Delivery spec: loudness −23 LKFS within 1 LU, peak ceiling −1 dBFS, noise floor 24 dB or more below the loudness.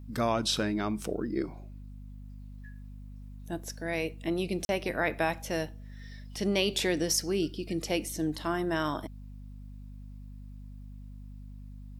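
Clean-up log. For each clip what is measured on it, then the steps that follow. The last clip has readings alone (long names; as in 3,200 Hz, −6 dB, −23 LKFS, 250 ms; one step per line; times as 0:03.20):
number of dropouts 1; longest dropout 40 ms; mains hum 50 Hz; hum harmonics up to 250 Hz; level of the hum −42 dBFS; integrated loudness −31.0 LKFS; sample peak −14.0 dBFS; target loudness −23.0 LKFS
→ repair the gap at 0:04.65, 40 ms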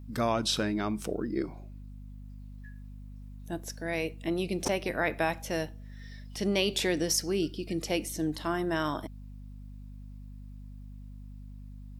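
number of dropouts 0; mains hum 50 Hz; hum harmonics up to 250 Hz; level of the hum −42 dBFS
→ mains-hum notches 50/100/150/200/250 Hz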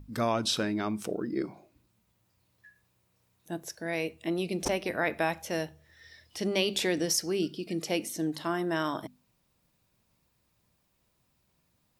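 mains hum none found; integrated loudness −31.0 LKFS; sample peak −13.5 dBFS; target loudness −23.0 LKFS
→ level +8 dB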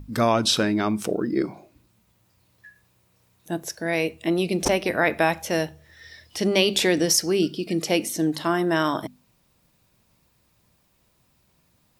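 integrated loudness −23.0 LKFS; sample peak −5.5 dBFS; background noise floor −65 dBFS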